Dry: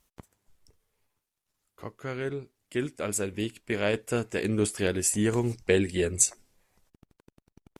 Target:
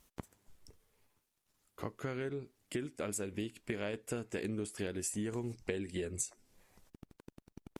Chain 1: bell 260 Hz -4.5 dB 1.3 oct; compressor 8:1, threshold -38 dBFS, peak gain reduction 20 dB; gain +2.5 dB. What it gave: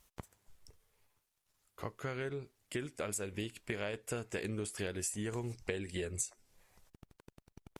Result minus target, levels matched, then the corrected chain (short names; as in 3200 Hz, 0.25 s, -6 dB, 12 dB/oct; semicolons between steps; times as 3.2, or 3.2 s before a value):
250 Hz band -2.5 dB
bell 260 Hz +3 dB 1.3 oct; compressor 8:1, threshold -38 dBFS, peak gain reduction 20.5 dB; gain +2.5 dB